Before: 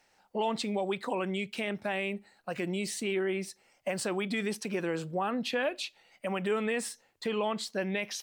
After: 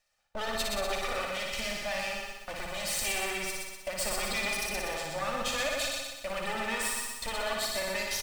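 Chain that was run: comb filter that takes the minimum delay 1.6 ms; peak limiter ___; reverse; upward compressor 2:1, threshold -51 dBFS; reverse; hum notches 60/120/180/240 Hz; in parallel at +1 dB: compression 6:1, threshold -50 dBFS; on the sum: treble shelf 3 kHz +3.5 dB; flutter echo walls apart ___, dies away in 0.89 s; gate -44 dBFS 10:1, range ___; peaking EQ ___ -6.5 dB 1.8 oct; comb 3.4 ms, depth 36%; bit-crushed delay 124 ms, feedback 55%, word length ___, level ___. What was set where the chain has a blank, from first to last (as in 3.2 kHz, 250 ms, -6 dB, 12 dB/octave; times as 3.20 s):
-25.5 dBFS, 10 m, -17 dB, 360 Hz, 9-bit, -4 dB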